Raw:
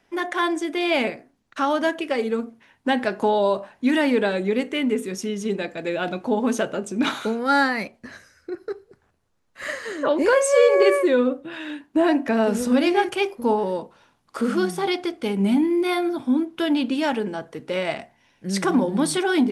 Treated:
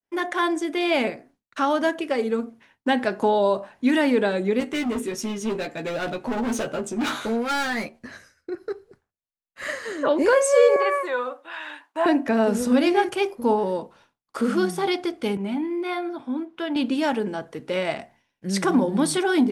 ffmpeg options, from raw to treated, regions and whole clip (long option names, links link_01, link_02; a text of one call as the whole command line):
ffmpeg -i in.wav -filter_complex "[0:a]asettb=1/sr,asplit=3[link_01][link_02][link_03];[link_01]atrim=end=4.604[link_04];[link_02]atrim=start=4.6:end=7.99,asetpts=PTS-STARTPTS,afade=type=in:duration=0.004:curve=qsin,afade=type=out:start_time=3.386:duration=0.004:curve=qsin,asoftclip=type=hard:threshold=-24dB,asplit=2[link_05][link_06];[link_06]adelay=13,volume=-4dB[link_07];[link_05][link_07]amix=inputs=2:normalize=0,atrim=end_sample=149499[link_08];[link_03]atrim=start=7.986[link_09];[link_04][link_08]acrossfade=duration=0.004:curve1=hsin:curve2=qsin[link_10];[link_10][link_09]acrossfade=duration=0.004:curve1=qsin:curve2=hsin,asettb=1/sr,asplit=3[link_11][link_12][link_13];[link_11]atrim=end=10.764[link_14];[link_12]atrim=start=10.76:end=12.06,asetpts=PTS-STARTPTS,afade=type=in:duration=0.004:curve=qsin,afade=type=out:start_time=1.296:duration=0.004:curve=qsin,acrossover=split=3100[link_15][link_16];[link_16]acompressor=threshold=-46dB:ratio=4:attack=1:release=60[link_17];[link_15][link_17]amix=inputs=2:normalize=0,highpass=frequency=920:width_type=q:width=2[link_18];[link_13]atrim=start=12.056[link_19];[link_14][link_18]acrossfade=duration=0.004:curve1=hsin:curve2=qsin[link_20];[link_20][link_19]acrossfade=duration=0.004:curve1=qsin:curve2=hsin,asettb=1/sr,asplit=3[link_21][link_22][link_23];[link_21]atrim=end=15.374[link_24];[link_22]atrim=start=15.37:end=16.76,asetpts=PTS-STARTPTS,afade=type=in:duration=0.004:curve=qsin,afade=type=out:start_time=1.386:duration=0.004:curve=qsin,lowpass=frequency=1800:poles=1,lowshelf=frequency=360:gain=-12[link_25];[link_23]atrim=start=16.756[link_26];[link_24][link_25]acrossfade=duration=0.004:curve1=hsin:curve2=qsin[link_27];[link_27][link_26]acrossfade=duration=0.004:curve1=qsin:curve2=hsin,agate=range=-33dB:threshold=-49dB:ratio=3:detection=peak,adynamicequalizer=threshold=0.0141:dfrequency=2700:dqfactor=1.1:tfrequency=2700:tqfactor=1.1:attack=5:release=100:ratio=0.375:range=2.5:mode=cutabove:tftype=bell" out.wav